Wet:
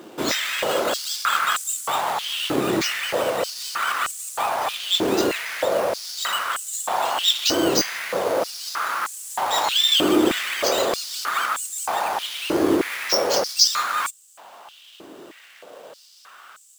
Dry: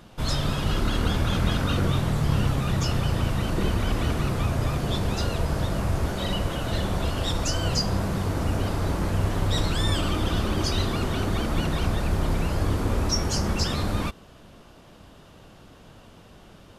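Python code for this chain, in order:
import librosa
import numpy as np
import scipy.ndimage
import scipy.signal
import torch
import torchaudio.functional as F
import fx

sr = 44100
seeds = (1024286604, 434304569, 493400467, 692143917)

y = fx.sample_hold(x, sr, seeds[0], rate_hz=11000.0, jitter_pct=0)
y = fx.filter_held_highpass(y, sr, hz=3.2, low_hz=340.0, high_hz=7600.0)
y = y * 10.0 ** (5.5 / 20.0)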